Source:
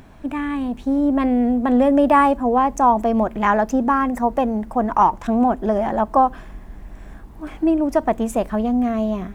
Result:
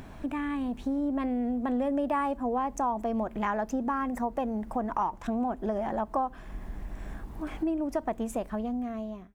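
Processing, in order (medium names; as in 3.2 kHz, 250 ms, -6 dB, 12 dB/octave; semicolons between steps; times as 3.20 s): fade out at the end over 1.13 s; compression 2.5:1, threshold -33 dBFS, peak gain reduction 15 dB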